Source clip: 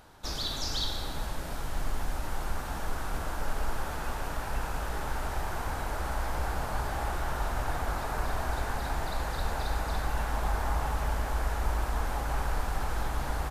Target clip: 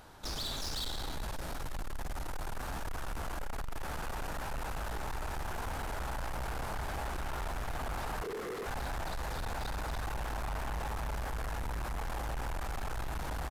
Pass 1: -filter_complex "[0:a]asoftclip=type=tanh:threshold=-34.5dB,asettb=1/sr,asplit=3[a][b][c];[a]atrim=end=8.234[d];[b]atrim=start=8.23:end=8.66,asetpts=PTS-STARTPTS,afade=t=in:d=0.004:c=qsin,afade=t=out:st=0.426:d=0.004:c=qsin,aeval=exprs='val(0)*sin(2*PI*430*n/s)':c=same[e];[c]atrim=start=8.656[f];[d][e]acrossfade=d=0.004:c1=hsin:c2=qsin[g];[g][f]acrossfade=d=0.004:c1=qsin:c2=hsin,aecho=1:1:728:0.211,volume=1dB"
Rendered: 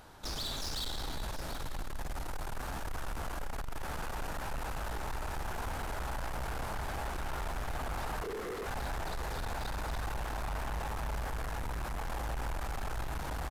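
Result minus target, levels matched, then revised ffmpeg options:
echo-to-direct +12 dB
-filter_complex "[0:a]asoftclip=type=tanh:threshold=-34.5dB,asettb=1/sr,asplit=3[a][b][c];[a]atrim=end=8.234[d];[b]atrim=start=8.23:end=8.66,asetpts=PTS-STARTPTS,afade=t=in:d=0.004:c=qsin,afade=t=out:st=0.426:d=0.004:c=qsin,aeval=exprs='val(0)*sin(2*PI*430*n/s)':c=same[e];[c]atrim=start=8.656[f];[d][e]acrossfade=d=0.004:c1=hsin:c2=qsin[g];[g][f]acrossfade=d=0.004:c1=qsin:c2=hsin,aecho=1:1:728:0.0531,volume=1dB"

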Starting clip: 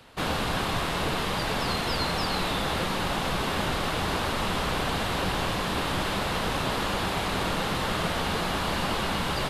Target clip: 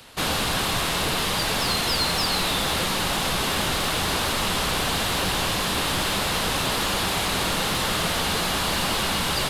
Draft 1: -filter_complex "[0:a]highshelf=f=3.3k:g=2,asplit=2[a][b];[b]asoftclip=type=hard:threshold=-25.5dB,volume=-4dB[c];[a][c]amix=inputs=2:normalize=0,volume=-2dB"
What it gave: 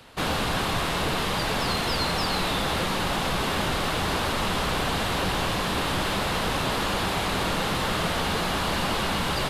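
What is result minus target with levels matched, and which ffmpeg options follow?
8000 Hz band -5.0 dB
-filter_complex "[0:a]highshelf=f=3.3k:g=11.5,asplit=2[a][b];[b]asoftclip=type=hard:threshold=-25.5dB,volume=-4dB[c];[a][c]amix=inputs=2:normalize=0,volume=-2dB"

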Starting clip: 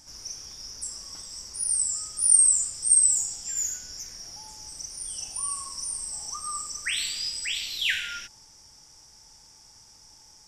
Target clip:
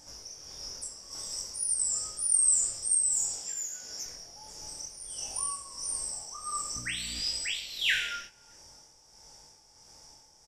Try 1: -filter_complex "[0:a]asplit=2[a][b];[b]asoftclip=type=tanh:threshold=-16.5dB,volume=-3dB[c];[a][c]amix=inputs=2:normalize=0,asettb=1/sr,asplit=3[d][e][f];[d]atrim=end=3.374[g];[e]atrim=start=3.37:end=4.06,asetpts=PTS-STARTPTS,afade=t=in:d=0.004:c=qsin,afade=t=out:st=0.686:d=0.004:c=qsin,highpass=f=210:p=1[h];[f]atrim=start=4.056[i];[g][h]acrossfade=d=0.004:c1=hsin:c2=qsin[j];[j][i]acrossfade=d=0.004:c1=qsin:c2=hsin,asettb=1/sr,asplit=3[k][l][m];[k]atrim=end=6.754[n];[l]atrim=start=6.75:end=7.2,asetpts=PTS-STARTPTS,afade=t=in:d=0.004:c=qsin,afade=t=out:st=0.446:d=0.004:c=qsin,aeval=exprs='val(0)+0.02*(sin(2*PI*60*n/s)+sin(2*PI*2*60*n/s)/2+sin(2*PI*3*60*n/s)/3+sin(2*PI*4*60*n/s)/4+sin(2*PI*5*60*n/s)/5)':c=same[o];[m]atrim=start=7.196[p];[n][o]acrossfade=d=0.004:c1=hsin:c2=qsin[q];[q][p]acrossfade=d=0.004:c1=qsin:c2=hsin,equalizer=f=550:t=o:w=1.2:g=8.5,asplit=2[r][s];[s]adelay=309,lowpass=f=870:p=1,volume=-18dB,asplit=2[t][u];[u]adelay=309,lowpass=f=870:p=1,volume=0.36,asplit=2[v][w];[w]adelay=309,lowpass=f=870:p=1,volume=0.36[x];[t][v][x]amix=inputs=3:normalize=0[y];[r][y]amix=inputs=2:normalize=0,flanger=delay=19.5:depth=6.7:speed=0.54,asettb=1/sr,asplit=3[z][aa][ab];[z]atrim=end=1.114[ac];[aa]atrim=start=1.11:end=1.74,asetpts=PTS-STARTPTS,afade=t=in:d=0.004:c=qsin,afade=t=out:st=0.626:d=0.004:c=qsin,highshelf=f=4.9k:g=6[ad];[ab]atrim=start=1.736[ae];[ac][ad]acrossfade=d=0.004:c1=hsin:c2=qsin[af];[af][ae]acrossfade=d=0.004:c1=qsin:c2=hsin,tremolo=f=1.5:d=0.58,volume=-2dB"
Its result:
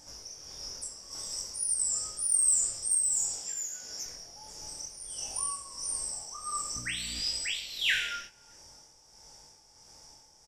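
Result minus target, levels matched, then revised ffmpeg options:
soft clip: distortion +15 dB
-filter_complex "[0:a]asplit=2[a][b];[b]asoftclip=type=tanh:threshold=-5.5dB,volume=-3dB[c];[a][c]amix=inputs=2:normalize=0,asettb=1/sr,asplit=3[d][e][f];[d]atrim=end=3.374[g];[e]atrim=start=3.37:end=4.06,asetpts=PTS-STARTPTS,afade=t=in:d=0.004:c=qsin,afade=t=out:st=0.686:d=0.004:c=qsin,highpass=f=210:p=1[h];[f]atrim=start=4.056[i];[g][h]acrossfade=d=0.004:c1=hsin:c2=qsin[j];[j][i]acrossfade=d=0.004:c1=qsin:c2=hsin,asettb=1/sr,asplit=3[k][l][m];[k]atrim=end=6.754[n];[l]atrim=start=6.75:end=7.2,asetpts=PTS-STARTPTS,afade=t=in:d=0.004:c=qsin,afade=t=out:st=0.446:d=0.004:c=qsin,aeval=exprs='val(0)+0.02*(sin(2*PI*60*n/s)+sin(2*PI*2*60*n/s)/2+sin(2*PI*3*60*n/s)/3+sin(2*PI*4*60*n/s)/4+sin(2*PI*5*60*n/s)/5)':c=same[o];[m]atrim=start=7.196[p];[n][o]acrossfade=d=0.004:c1=hsin:c2=qsin[q];[q][p]acrossfade=d=0.004:c1=qsin:c2=hsin,equalizer=f=550:t=o:w=1.2:g=8.5,asplit=2[r][s];[s]adelay=309,lowpass=f=870:p=1,volume=-18dB,asplit=2[t][u];[u]adelay=309,lowpass=f=870:p=1,volume=0.36,asplit=2[v][w];[w]adelay=309,lowpass=f=870:p=1,volume=0.36[x];[t][v][x]amix=inputs=3:normalize=0[y];[r][y]amix=inputs=2:normalize=0,flanger=delay=19.5:depth=6.7:speed=0.54,asettb=1/sr,asplit=3[z][aa][ab];[z]atrim=end=1.114[ac];[aa]atrim=start=1.11:end=1.74,asetpts=PTS-STARTPTS,afade=t=in:d=0.004:c=qsin,afade=t=out:st=0.626:d=0.004:c=qsin,highshelf=f=4.9k:g=6[ad];[ab]atrim=start=1.736[ae];[ac][ad]acrossfade=d=0.004:c1=hsin:c2=qsin[af];[af][ae]acrossfade=d=0.004:c1=qsin:c2=hsin,tremolo=f=1.5:d=0.58,volume=-2dB"

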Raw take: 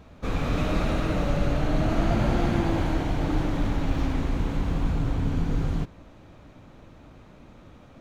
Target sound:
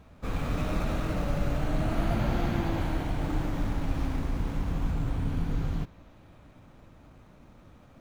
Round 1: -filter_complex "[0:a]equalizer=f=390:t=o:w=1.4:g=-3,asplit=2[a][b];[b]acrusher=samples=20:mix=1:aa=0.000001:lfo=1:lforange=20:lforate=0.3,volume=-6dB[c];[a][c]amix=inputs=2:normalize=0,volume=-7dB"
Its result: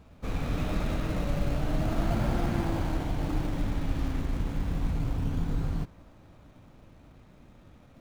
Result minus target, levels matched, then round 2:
decimation with a swept rate: distortion +7 dB
-filter_complex "[0:a]equalizer=f=390:t=o:w=1.4:g=-3,asplit=2[a][b];[b]acrusher=samples=6:mix=1:aa=0.000001:lfo=1:lforange=6:lforate=0.3,volume=-6dB[c];[a][c]amix=inputs=2:normalize=0,volume=-7dB"

